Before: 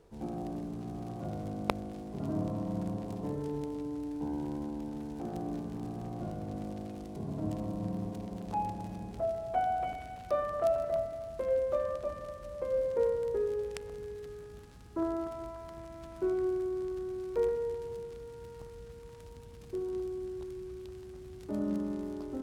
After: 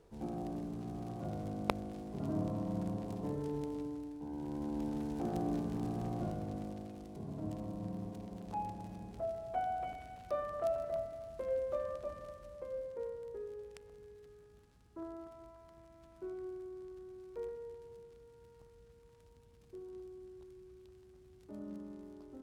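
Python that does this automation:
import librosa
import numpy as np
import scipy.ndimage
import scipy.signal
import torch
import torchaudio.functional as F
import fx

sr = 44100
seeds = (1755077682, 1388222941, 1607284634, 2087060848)

y = fx.gain(x, sr, db=fx.line((3.81, -2.5), (4.21, -9.5), (4.81, 1.5), (6.12, 1.5), (6.93, -6.0), (12.28, -6.0), (12.98, -13.0)))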